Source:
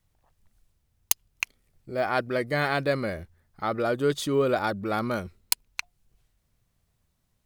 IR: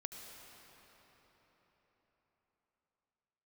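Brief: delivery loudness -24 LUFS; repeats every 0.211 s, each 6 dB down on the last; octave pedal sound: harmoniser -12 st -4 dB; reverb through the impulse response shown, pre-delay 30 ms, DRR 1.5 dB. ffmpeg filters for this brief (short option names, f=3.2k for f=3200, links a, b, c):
-filter_complex "[0:a]aecho=1:1:211|422|633|844|1055|1266:0.501|0.251|0.125|0.0626|0.0313|0.0157,asplit=2[a][b];[1:a]atrim=start_sample=2205,adelay=30[c];[b][c]afir=irnorm=-1:irlink=0,volume=1dB[d];[a][d]amix=inputs=2:normalize=0,asplit=2[e][f];[f]asetrate=22050,aresample=44100,atempo=2,volume=-4dB[g];[e][g]amix=inputs=2:normalize=0,volume=-0.5dB"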